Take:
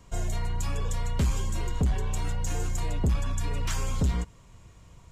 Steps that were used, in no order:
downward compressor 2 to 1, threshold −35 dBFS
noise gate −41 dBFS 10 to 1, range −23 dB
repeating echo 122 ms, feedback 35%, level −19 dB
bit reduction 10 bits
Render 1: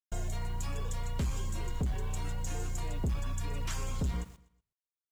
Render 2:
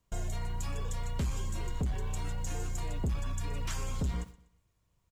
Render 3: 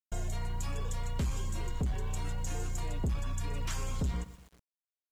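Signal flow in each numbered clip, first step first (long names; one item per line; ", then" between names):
noise gate, then downward compressor, then bit reduction, then repeating echo
bit reduction, then downward compressor, then noise gate, then repeating echo
noise gate, then repeating echo, then bit reduction, then downward compressor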